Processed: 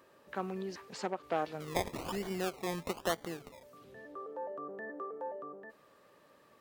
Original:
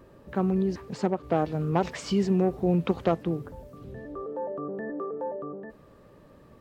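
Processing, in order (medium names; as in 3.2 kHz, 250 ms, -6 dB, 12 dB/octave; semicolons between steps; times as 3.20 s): high-pass 1.3 kHz 6 dB/octave; 1.60–3.63 s: decimation with a swept rate 24×, swing 60% 1.1 Hz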